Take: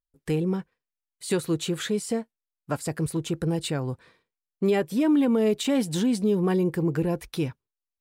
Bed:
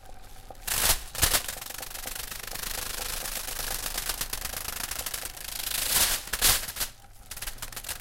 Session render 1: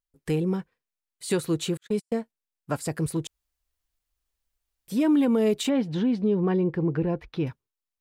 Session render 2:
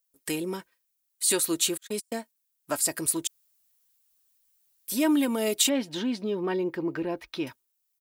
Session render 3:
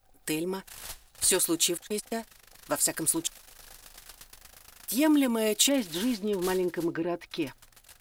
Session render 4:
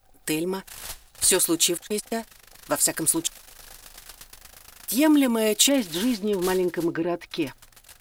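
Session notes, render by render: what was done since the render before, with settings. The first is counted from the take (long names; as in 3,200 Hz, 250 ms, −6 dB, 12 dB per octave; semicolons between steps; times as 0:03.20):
0:01.77–0:02.17: noise gate −29 dBFS, range −53 dB; 0:03.27–0:04.88: fill with room tone; 0:05.69–0:07.47: high-frequency loss of the air 280 metres
RIAA equalisation recording; comb filter 3.2 ms, depth 47%
mix in bed −18 dB
level +4.5 dB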